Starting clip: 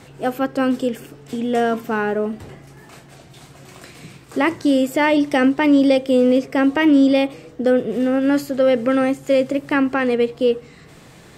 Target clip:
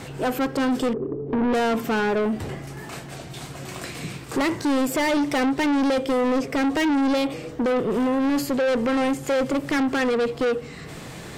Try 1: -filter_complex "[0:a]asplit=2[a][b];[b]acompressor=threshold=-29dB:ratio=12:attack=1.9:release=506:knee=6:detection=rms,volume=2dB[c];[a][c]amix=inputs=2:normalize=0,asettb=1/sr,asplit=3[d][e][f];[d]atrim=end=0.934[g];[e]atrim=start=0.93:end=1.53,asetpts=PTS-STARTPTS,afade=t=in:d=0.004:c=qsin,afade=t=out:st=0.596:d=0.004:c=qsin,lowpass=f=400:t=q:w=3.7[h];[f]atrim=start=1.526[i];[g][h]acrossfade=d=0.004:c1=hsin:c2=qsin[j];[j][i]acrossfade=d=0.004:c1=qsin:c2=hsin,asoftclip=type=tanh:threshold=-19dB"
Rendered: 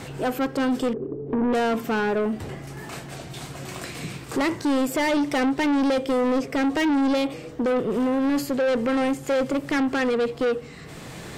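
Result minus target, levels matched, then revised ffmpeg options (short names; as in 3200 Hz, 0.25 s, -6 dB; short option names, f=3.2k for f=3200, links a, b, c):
compressor: peak gain reduction +10.5 dB
-filter_complex "[0:a]asplit=2[a][b];[b]acompressor=threshold=-17.5dB:ratio=12:attack=1.9:release=506:knee=6:detection=rms,volume=2dB[c];[a][c]amix=inputs=2:normalize=0,asettb=1/sr,asplit=3[d][e][f];[d]atrim=end=0.934[g];[e]atrim=start=0.93:end=1.53,asetpts=PTS-STARTPTS,afade=t=in:d=0.004:c=qsin,afade=t=out:st=0.596:d=0.004:c=qsin,lowpass=f=400:t=q:w=3.7[h];[f]atrim=start=1.526[i];[g][h]acrossfade=d=0.004:c1=hsin:c2=qsin[j];[j][i]acrossfade=d=0.004:c1=qsin:c2=hsin,asoftclip=type=tanh:threshold=-19dB"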